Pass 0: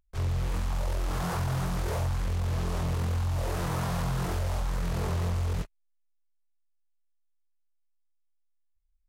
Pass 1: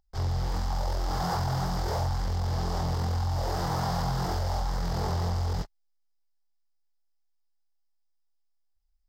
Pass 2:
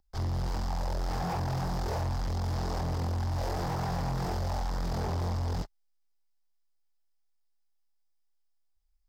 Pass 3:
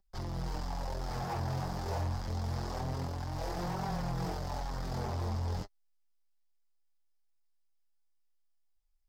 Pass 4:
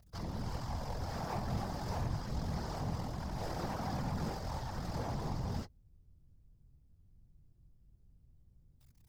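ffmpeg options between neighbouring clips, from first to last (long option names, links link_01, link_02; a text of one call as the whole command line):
ffmpeg -i in.wav -af "equalizer=frequency=800:width_type=o:width=0.33:gain=10,equalizer=frequency=2500:width_type=o:width=0.33:gain=-10,equalizer=frequency=5000:width_type=o:width=0.33:gain=11,equalizer=frequency=10000:width_type=o:width=0.33:gain=-11" out.wav
ffmpeg -i in.wav -filter_complex "[0:a]acrossover=split=380|920[link_01][link_02][link_03];[link_03]alimiter=level_in=7.5dB:limit=-24dB:level=0:latency=1:release=321,volume=-7.5dB[link_04];[link_01][link_02][link_04]amix=inputs=3:normalize=0,asoftclip=type=hard:threshold=-28.5dB" out.wav
ffmpeg -i in.wav -af "flanger=delay=5.1:depth=5.1:regen=18:speed=0.26:shape=triangular" out.wav
ffmpeg -i in.wav -af "aeval=exprs='val(0)+0.5*0.00211*sgn(val(0))':channel_layout=same,bandreject=frequency=390:width=12,afftfilt=real='hypot(re,im)*cos(2*PI*random(0))':imag='hypot(re,im)*sin(2*PI*random(1))':win_size=512:overlap=0.75,volume=3.5dB" out.wav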